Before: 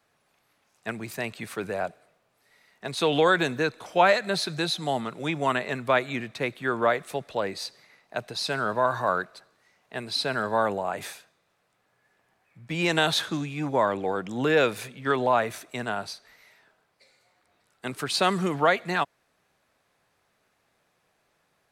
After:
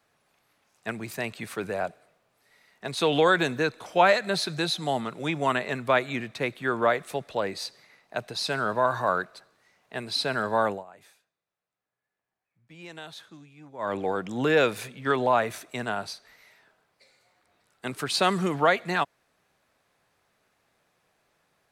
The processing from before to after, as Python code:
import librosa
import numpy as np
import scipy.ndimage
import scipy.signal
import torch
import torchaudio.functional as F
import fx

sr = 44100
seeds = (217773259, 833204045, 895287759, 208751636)

y = fx.edit(x, sr, fx.fade_down_up(start_s=10.68, length_s=3.27, db=-19.0, fade_s=0.17), tone=tone)